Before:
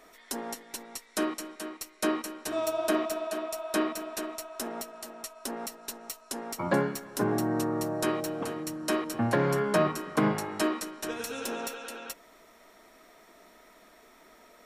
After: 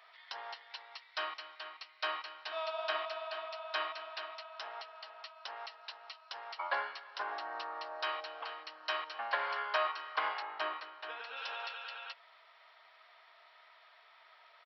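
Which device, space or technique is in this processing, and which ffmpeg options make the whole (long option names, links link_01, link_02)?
musical greeting card: -filter_complex "[0:a]asettb=1/sr,asplit=3[link_01][link_02][link_03];[link_01]atrim=end=10.424[link_04];[link_02]atrim=start=10.42:end=11.37,asetpts=PTS-STARTPTS,afade=type=in:duration=0.004:curve=qsin,afade=type=out:start_time=0.946:duration=0.004:curve=qsin,aemphasis=mode=reproduction:type=riaa[link_05];[link_03]atrim=start=11.366[link_06];[link_04][link_05]acrossfade=duration=0.004:curve1=hsin:curve2=qsin[link_07];[link_07][link_06]acrossfade=duration=0.004:curve1=qsin:curve2=hsin,aresample=11025,aresample=44100,highpass=frequency=790:width=0.5412,highpass=frequency=790:width=1.3066,equalizer=frequency=3000:width_type=o:width=0.3:gain=5,volume=-2dB"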